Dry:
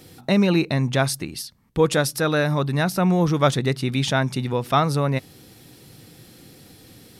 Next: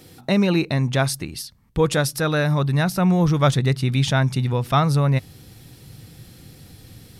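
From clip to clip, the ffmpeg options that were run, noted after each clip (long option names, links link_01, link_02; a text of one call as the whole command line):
ffmpeg -i in.wav -af "asubboost=boost=3.5:cutoff=150" out.wav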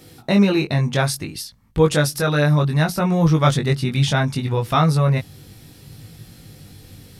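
ffmpeg -i in.wav -af "flanger=delay=18.5:depth=2.2:speed=0.64,volume=4.5dB" out.wav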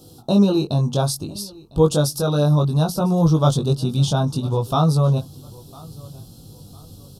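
ffmpeg -i in.wav -af "asuperstop=centerf=2000:order=4:qfactor=0.82,aecho=1:1:1003|2006:0.0708|0.0234" out.wav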